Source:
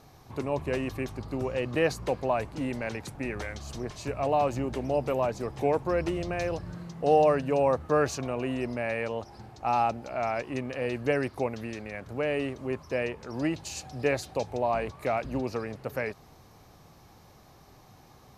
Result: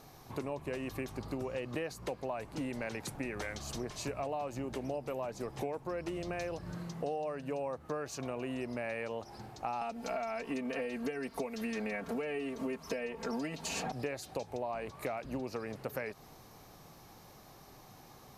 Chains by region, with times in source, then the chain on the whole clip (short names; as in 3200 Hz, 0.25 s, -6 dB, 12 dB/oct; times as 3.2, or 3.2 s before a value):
9.81–13.92 comb 4.4 ms, depth 99% + three-band squash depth 100%
whole clip: bell 75 Hz -7 dB 1.2 oct; compressor 10:1, threshold -34 dBFS; high shelf 9400 Hz +7 dB